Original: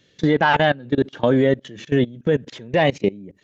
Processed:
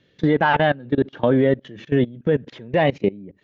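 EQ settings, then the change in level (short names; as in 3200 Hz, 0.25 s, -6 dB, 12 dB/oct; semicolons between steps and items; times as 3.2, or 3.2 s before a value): air absorption 130 m; high shelf 5500 Hz -8 dB; 0.0 dB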